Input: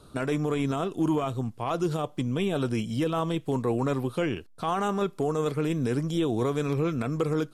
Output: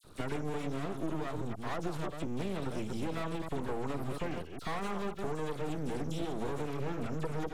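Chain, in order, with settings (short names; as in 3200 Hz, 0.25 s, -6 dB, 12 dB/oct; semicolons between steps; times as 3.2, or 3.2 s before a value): reverse delay 0.138 s, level -8 dB; half-wave rectifier; compressor, threshold -30 dBFS, peak gain reduction 8 dB; dispersion lows, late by 41 ms, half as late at 2300 Hz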